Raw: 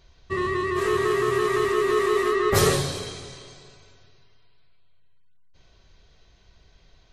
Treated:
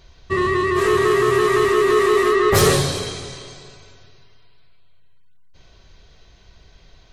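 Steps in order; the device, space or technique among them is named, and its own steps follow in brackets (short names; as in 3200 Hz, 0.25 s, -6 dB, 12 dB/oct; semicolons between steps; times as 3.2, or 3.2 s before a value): saturation between pre-emphasis and de-emphasis (high shelf 3600 Hz +7.5 dB; soft clip -12.5 dBFS, distortion -19 dB; high shelf 3600 Hz -7.5 dB); gain +7 dB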